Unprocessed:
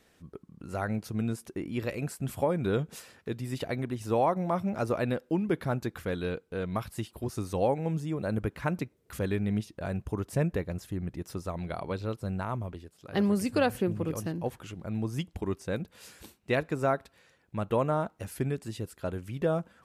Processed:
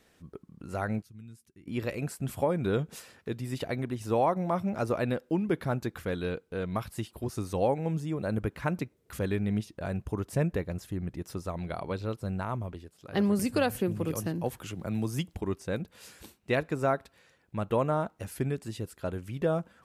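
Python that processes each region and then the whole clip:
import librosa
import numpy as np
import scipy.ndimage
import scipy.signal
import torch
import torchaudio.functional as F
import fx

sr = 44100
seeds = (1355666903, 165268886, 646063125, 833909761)

y = fx.chain(x, sr, fx.highpass(hz=52.0, slope=12),
    fx.tone_stack(knobs='6-0-2'), at=(1.02, 1.67))
y = fx.chain(y, sr, fx.high_shelf(hz=8300.0, db=7.5),
    fx.band_squash(depth_pct=40), at=(13.39, 15.36))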